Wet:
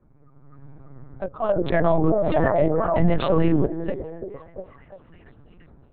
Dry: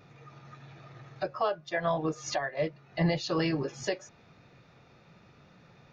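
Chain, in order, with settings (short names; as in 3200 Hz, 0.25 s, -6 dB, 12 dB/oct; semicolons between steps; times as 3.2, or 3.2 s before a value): Wiener smoothing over 15 samples; gate with hold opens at -51 dBFS; HPF 68 Hz 12 dB/oct; tilt -3 dB/oct; AGC gain up to 9.5 dB; air absorption 81 m; delay with a stepping band-pass 0.345 s, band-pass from 320 Hz, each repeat 0.7 oct, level -4 dB; LPC vocoder at 8 kHz pitch kept; 1.49–3.66 fast leveller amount 70%; gain -7.5 dB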